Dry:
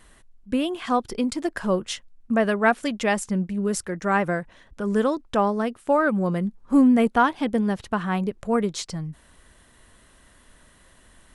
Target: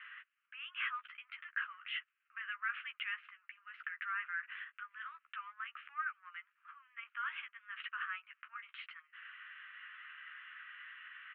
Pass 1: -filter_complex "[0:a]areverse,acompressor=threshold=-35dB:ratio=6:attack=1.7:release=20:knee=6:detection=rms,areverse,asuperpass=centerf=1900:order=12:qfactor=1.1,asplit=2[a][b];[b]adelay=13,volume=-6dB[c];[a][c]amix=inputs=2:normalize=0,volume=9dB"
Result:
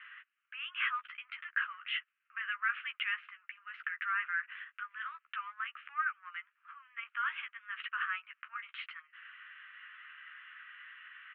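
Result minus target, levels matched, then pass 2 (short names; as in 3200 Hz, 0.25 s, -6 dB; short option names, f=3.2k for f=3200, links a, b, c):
compressor: peak gain reduction -5.5 dB
-filter_complex "[0:a]areverse,acompressor=threshold=-41.5dB:ratio=6:attack=1.7:release=20:knee=6:detection=rms,areverse,asuperpass=centerf=1900:order=12:qfactor=1.1,asplit=2[a][b];[b]adelay=13,volume=-6dB[c];[a][c]amix=inputs=2:normalize=0,volume=9dB"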